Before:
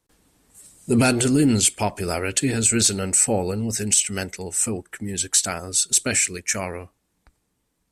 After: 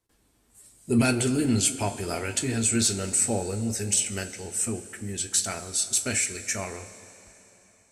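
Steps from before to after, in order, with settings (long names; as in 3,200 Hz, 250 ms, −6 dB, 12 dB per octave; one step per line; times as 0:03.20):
coupled-rooms reverb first 0.2 s, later 3.6 s, from −19 dB, DRR 4.5 dB
level −6.5 dB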